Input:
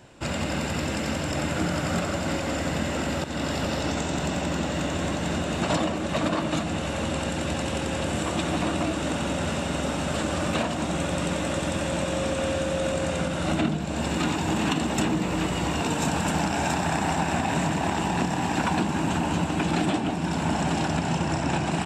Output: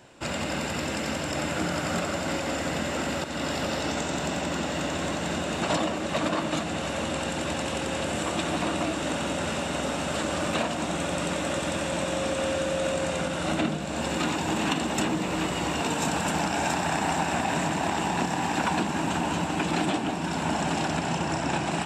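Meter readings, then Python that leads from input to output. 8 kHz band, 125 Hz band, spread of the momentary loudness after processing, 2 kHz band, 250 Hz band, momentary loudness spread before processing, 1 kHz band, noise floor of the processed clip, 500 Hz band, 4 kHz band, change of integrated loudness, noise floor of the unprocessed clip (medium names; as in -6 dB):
+0.5 dB, -5.0 dB, 3 LU, 0.0 dB, -3.0 dB, 3 LU, 0.0 dB, -31 dBFS, -0.5 dB, +0.5 dB, -1.5 dB, -29 dBFS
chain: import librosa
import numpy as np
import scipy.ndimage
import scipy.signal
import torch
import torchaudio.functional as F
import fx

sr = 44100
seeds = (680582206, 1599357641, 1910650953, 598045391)

y = fx.low_shelf(x, sr, hz=170.0, db=-8.5)
y = fx.echo_thinned(y, sr, ms=1131, feedback_pct=62, hz=420.0, wet_db=-13.0)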